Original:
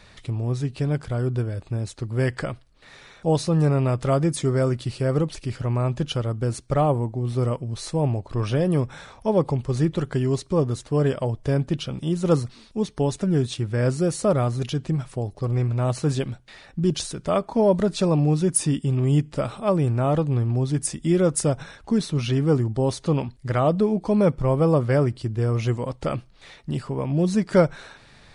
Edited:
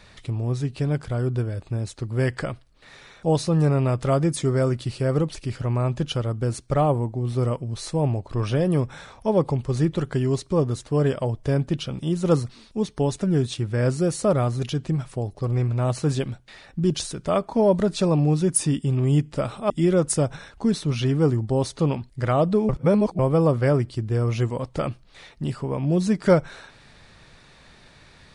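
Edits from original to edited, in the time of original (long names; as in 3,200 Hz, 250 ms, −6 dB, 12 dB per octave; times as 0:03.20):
0:19.70–0:20.97: remove
0:23.96–0:24.46: reverse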